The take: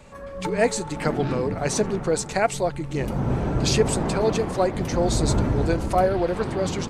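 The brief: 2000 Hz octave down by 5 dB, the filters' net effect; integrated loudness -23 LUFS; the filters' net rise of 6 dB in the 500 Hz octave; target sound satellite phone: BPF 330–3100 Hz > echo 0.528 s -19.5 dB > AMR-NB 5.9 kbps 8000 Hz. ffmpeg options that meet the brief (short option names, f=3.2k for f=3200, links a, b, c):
-af "highpass=330,lowpass=3.1k,equalizer=f=500:t=o:g=8.5,equalizer=f=2k:t=o:g=-6.5,aecho=1:1:528:0.106,volume=-1.5dB" -ar 8000 -c:a libopencore_amrnb -b:a 5900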